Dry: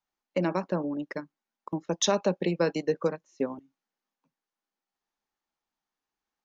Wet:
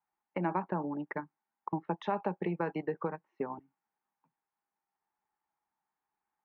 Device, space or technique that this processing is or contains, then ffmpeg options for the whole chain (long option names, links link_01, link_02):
bass amplifier: -af "acompressor=threshold=-27dB:ratio=4,highpass=70,equalizer=frequency=260:width_type=q:width=4:gain=-7,equalizer=frequency=540:width_type=q:width=4:gain=-9,equalizer=frequency=860:width_type=q:width=4:gain=9,lowpass=frequency=2200:width=0.5412,lowpass=frequency=2200:width=1.3066"